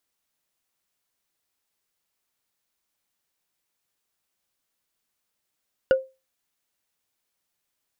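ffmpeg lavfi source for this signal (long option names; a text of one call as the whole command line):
ffmpeg -f lavfi -i "aevalsrc='0.282*pow(10,-3*t/0.26)*sin(2*PI*527*t)+0.106*pow(10,-3*t/0.077)*sin(2*PI*1452.9*t)+0.0398*pow(10,-3*t/0.034)*sin(2*PI*2847.9*t)+0.015*pow(10,-3*t/0.019)*sin(2*PI*4707.7*t)+0.00562*pow(10,-3*t/0.012)*sin(2*PI*7030.2*t)':duration=0.45:sample_rate=44100" out.wav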